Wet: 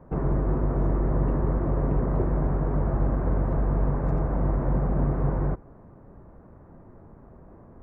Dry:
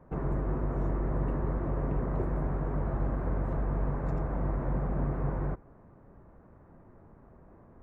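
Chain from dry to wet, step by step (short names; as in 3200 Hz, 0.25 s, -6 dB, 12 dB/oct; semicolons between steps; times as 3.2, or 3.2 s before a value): high shelf 2000 Hz -9.5 dB; gain +6.5 dB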